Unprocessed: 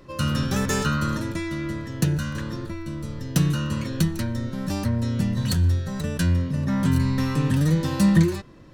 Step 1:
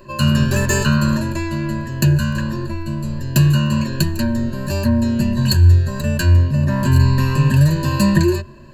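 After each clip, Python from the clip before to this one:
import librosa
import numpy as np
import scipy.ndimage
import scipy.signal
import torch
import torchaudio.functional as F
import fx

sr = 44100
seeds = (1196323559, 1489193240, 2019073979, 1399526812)

y = fx.ripple_eq(x, sr, per_octave=1.4, db=17)
y = y * 10.0 ** (3.0 / 20.0)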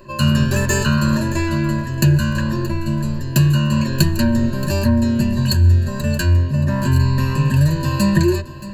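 y = fx.rider(x, sr, range_db=3, speed_s=0.5)
y = y + 10.0 ** (-16.0 / 20.0) * np.pad(y, (int(625 * sr / 1000.0), 0))[:len(y)]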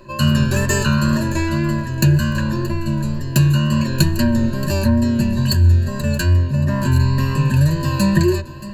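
y = fx.wow_flutter(x, sr, seeds[0], rate_hz=2.1, depth_cents=28.0)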